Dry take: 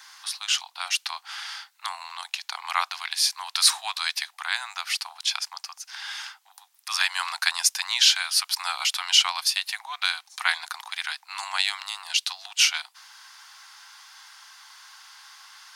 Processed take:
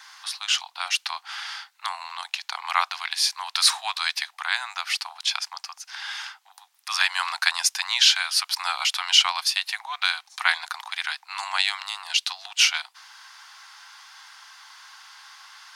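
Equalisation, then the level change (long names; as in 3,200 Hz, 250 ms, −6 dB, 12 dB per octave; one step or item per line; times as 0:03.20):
high-shelf EQ 6,500 Hz −8 dB
+3.0 dB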